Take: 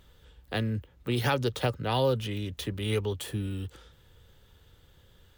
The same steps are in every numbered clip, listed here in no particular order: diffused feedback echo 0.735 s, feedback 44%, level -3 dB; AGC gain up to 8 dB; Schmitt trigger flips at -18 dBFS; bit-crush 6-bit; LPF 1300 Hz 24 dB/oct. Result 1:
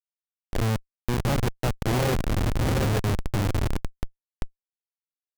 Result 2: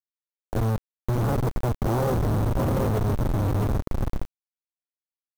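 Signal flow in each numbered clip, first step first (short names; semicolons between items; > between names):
AGC > diffused feedback echo > bit-crush > LPF > Schmitt trigger; AGC > diffused feedback echo > Schmitt trigger > LPF > bit-crush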